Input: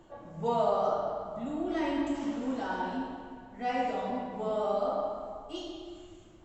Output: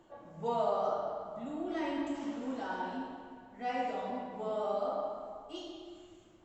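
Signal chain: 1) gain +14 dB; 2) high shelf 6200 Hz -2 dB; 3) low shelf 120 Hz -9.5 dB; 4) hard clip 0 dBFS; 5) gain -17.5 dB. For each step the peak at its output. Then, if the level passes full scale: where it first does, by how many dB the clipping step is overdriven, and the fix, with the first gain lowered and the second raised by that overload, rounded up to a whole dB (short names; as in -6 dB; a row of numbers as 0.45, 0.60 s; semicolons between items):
-2.5, -2.5, -2.5, -2.5, -20.0 dBFS; no overload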